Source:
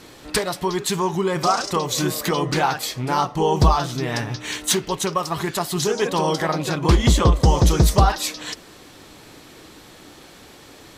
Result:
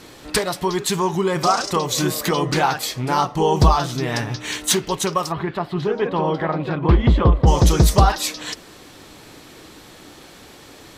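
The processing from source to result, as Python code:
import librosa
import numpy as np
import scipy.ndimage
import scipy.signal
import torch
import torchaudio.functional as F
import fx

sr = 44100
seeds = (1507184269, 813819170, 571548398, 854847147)

y = fx.air_absorb(x, sr, metres=430.0, at=(5.31, 7.46), fade=0.02)
y = y * librosa.db_to_amplitude(1.5)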